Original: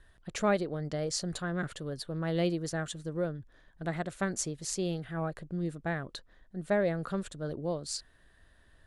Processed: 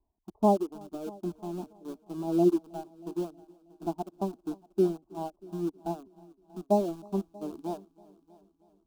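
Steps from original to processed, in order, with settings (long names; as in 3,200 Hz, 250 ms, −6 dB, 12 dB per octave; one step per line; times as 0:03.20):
Butterworth low-pass 1,000 Hz 72 dB per octave
reverb reduction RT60 1.9 s
high-pass filter 110 Hz 6 dB per octave
dynamic equaliser 260 Hz, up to +5 dB, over −47 dBFS, Q 1.1
phase shifter 0.83 Hz, delay 1.7 ms, feedback 20%
in parallel at −4.5 dB: centre clipping without the shift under −35 dBFS
on the sum: phaser with its sweep stopped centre 520 Hz, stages 6
on a send: echo machine with several playback heads 318 ms, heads first and second, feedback 49%, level −18 dB
on the sum: expander for the loud parts 1.5 to 1, over −50 dBFS
level +5 dB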